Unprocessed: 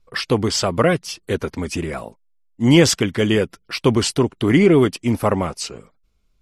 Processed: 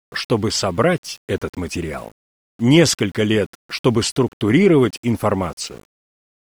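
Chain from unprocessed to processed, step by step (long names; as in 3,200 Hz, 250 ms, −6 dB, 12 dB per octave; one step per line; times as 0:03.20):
centre clipping without the shift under −39.5 dBFS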